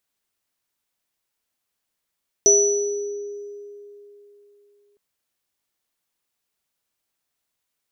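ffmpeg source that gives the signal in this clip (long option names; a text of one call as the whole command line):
ffmpeg -f lavfi -i "aevalsrc='0.178*pow(10,-3*t/3.36)*sin(2*PI*409*t)+0.0447*pow(10,-3*t/0.88)*sin(2*PI*654*t)+0.299*pow(10,-3*t/1.19)*sin(2*PI*5930*t)':duration=2.51:sample_rate=44100" out.wav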